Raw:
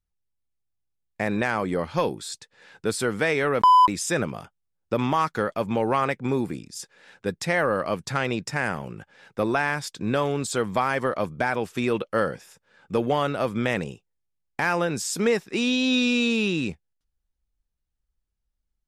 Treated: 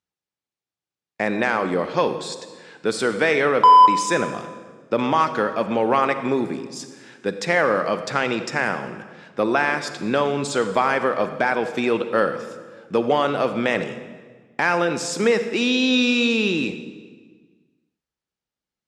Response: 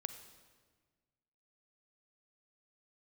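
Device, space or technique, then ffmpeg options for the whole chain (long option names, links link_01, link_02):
supermarket ceiling speaker: -filter_complex "[0:a]highpass=210,lowpass=6600[link_01];[1:a]atrim=start_sample=2205[link_02];[link_01][link_02]afir=irnorm=-1:irlink=0,volume=6.5dB"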